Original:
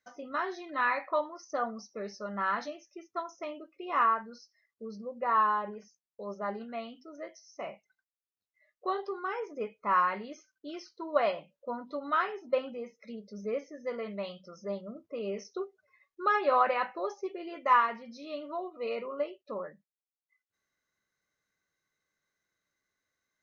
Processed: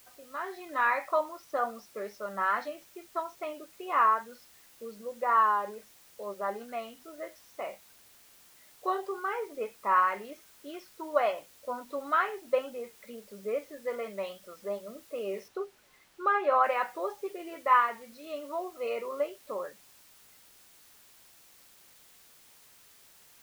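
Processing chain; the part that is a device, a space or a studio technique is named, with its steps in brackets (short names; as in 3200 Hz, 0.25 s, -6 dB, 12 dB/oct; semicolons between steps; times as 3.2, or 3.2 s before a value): dictaphone (BPF 340–3200 Hz; AGC gain up to 11.5 dB; wow and flutter; white noise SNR 25 dB); 15.48–16.64 high shelf 5400 Hz -11 dB; gain -9 dB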